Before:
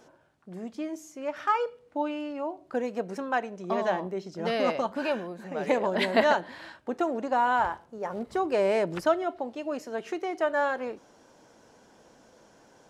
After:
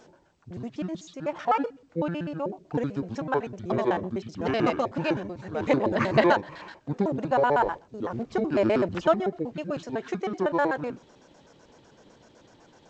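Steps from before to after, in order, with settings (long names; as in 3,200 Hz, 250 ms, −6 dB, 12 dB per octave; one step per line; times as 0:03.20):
pitch shifter gated in a rhythm −9.5 semitones, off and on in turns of 63 ms
level +2.5 dB
G.722 64 kbit/s 16,000 Hz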